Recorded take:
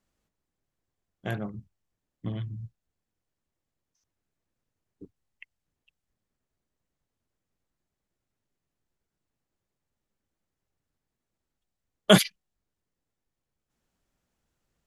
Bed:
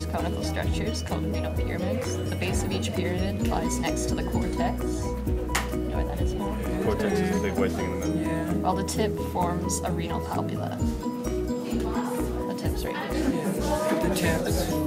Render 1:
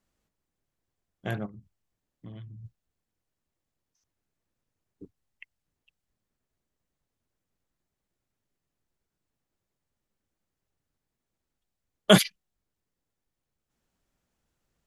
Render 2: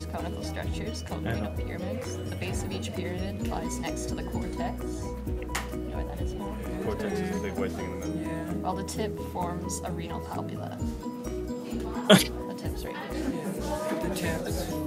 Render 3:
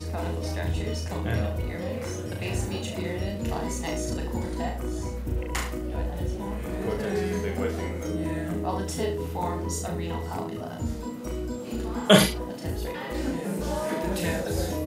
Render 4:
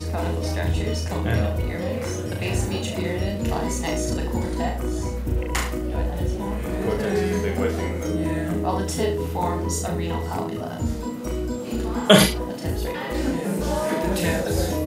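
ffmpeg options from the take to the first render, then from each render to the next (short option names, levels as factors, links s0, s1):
-filter_complex "[0:a]asplit=3[s0][s1][s2];[s0]afade=t=out:st=1.45:d=0.02[s3];[s1]acompressor=threshold=0.00355:ratio=2:attack=3.2:release=140:knee=1:detection=peak,afade=t=in:st=1.45:d=0.02,afade=t=out:st=2.64:d=0.02[s4];[s2]afade=t=in:st=2.64:d=0.02[s5];[s3][s4][s5]amix=inputs=3:normalize=0"
-filter_complex "[1:a]volume=0.531[s0];[0:a][s0]amix=inputs=2:normalize=0"
-filter_complex "[0:a]asplit=2[s0][s1];[s1]adelay=36,volume=0.596[s2];[s0][s2]amix=inputs=2:normalize=0,asplit=2[s3][s4];[s4]aecho=0:1:34|71:0.398|0.316[s5];[s3][s5]amix=inputs=2:normalize=0"
-af "volume=1.78,alimiter=limit=0.891:level=0:latency=1"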